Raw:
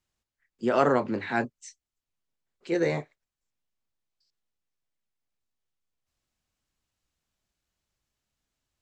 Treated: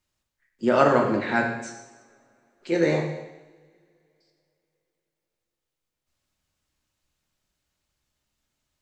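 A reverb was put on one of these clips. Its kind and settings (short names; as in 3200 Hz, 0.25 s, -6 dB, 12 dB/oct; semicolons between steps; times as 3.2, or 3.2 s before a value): two-slope reverb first 0.96 s, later 3.3 s, from -26 dB, DRR 1.5 dB; gain +2.5 dB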